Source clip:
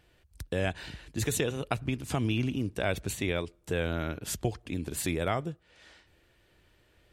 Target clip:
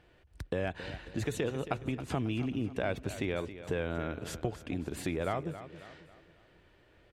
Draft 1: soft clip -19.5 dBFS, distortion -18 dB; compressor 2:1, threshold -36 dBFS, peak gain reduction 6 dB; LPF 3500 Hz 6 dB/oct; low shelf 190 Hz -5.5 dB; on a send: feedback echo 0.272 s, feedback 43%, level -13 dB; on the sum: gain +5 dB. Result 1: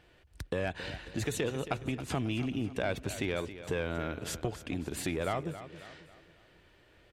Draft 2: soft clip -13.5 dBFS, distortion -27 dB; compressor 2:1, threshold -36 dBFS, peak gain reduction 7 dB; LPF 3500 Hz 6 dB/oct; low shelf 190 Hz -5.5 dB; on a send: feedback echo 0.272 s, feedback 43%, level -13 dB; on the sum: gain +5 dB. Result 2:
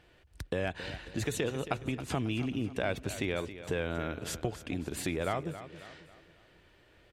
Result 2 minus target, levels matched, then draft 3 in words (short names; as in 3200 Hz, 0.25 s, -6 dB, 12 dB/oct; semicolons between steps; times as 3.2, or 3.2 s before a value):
4000 Hz band +3.5 dB
soft clip -13.5 dBFS, distortion -27 dB; compressor 2:1, threshold -36 dBFS, peak gain reduction 7 dB; LPF 1700 Hz 6 dB/oct; low shelf 190 Hz -5.5 dB; on a send: feedback echo 0.272 s, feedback 43%, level -13 dB; on the sum: gain +5 dB